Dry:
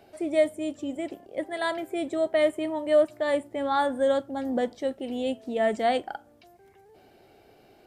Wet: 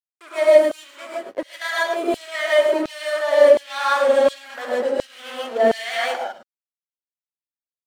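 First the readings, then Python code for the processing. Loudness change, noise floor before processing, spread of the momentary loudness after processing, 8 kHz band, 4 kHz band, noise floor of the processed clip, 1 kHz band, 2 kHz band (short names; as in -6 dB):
+8.0 dB, -57 dBFS, 18 LU, n/a, +9.5 dB, under -85 dBFS, +5.0 dB, +10.5 dB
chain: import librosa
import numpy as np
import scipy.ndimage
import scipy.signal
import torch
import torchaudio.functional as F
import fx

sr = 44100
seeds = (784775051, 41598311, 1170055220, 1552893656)

p1 = x + fx.echo_thinned(x, sr, ms=106, feedback_pct=26, hz=240.0, wet_db=-7.5, dry=0)
p2 = fx.backlash(p1, sr, play_db=-27.0)
p3 = fx.rev_gated(p2, sr, seeds[0], gate_ms=180, shape='rising', drr_db=-5.0)
p4 = fx.filter_lfo_highpass(p3, sr, shape='saw_down', hz=1.4, low_hz=310.0, high_hz=4200.0, q=1.2)
y = p4 * librosa.db_to_amplitude(4.5)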